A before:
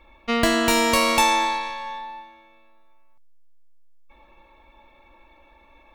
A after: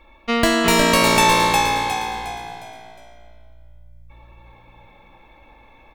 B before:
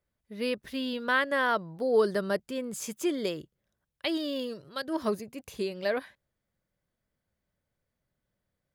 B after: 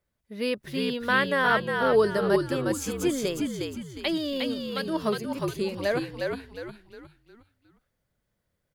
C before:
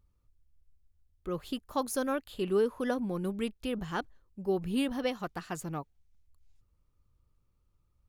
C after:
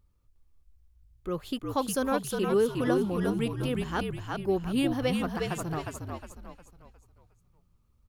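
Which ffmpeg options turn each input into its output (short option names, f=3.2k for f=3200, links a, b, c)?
-filter_complex "[0:a]asplit=6[a][b][c][d][e][f];[b]adelay=359,afreqshift=-58,volume=-3.5dB[g];[c]adelay=718,afreqshift=-116,volume=-11.7dB[h];[d]adelay=1077,afreqshift=-174,volume=-19.9dB[i];[e]adelay=1436,afreqshift=-232,volume=-28dB[j];[f]adelay=1795,afreqshift=-290,volume=-36.2dB[k];[a][g][h][i][j][k]amix=inputs=6:normalize=0,volume=2.5dB"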